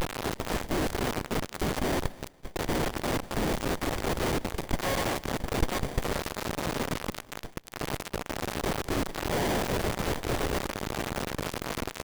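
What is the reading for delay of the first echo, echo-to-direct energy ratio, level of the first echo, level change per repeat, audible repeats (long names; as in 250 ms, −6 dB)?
205 ms, −21.5 dB, −22.0 dB, −10.0 dB, 2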